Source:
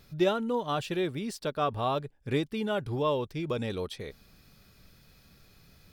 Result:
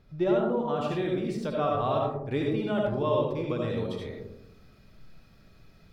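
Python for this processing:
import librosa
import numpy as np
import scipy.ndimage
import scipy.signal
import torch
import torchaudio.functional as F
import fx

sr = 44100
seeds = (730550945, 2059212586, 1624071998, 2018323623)

y = fx.lowpass(x, sr, hz=fx.steps((0.0, 1100.0), (0.81, 2600.0)), slope=6)
y = fx.rev_freeverb(y, sr, rt60_s=0.83, hf_ratio=0.25, predelay_ms=35, drr_db=-1.0)
y = y * librosa.db_to_amplitude(-1.5)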